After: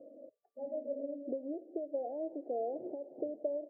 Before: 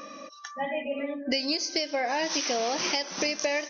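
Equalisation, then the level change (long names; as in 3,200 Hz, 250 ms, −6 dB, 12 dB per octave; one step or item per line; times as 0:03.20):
Chebyshev band-pass filter 120–690 Hz, order 4
phaser with its sweep stopped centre 450 Hz, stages 4
−4.0 dB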